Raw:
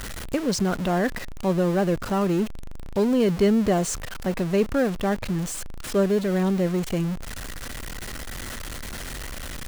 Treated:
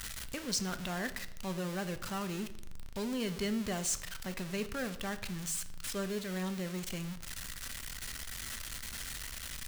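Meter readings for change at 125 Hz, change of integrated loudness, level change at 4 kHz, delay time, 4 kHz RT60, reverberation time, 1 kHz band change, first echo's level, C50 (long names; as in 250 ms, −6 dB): −14.0 dB, −12.5 dB, −4.0 dB, no echo audible, 0.60 s, 0.85 s, −13.0 dB, no echo audible, 14.0 dB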